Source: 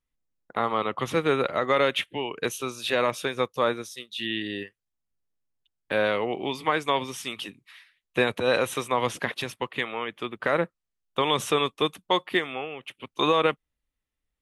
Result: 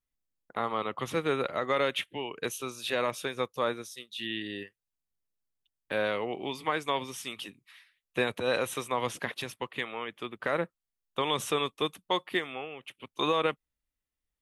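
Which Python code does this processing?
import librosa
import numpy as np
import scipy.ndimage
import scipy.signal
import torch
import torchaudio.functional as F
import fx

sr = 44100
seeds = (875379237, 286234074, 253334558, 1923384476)

y = fx.high_shelf(x, sr, hz=7800.0, db=5.0)
y = y * 10.0 ** (-5.5 / 20.0)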